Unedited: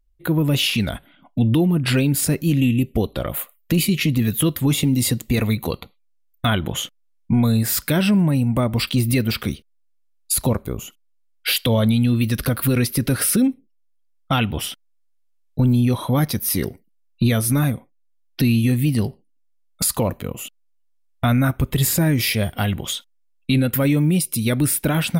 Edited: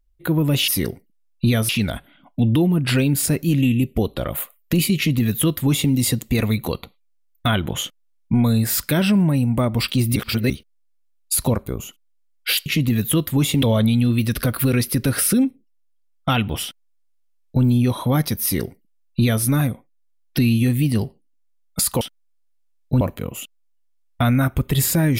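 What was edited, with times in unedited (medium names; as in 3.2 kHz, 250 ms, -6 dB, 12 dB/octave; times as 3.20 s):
3.95–4.91 s: copy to 11.65 s
9.15–9.49 s: reverse
14.67–15.67 s: copy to 20.04 s
16.46–17.47 s: copy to 0.68 s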